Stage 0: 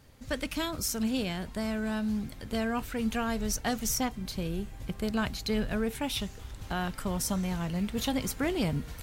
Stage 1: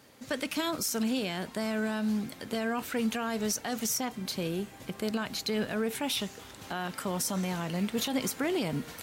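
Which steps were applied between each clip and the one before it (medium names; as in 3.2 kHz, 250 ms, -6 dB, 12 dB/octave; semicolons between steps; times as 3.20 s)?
high-pass 220 Hz 12 dB/octave; peak limiter -25.5 dBFS, peak gain reduction 10 dB; trim +4.5 dB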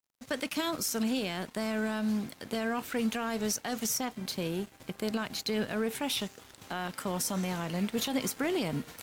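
crossover distortion -50 dBFS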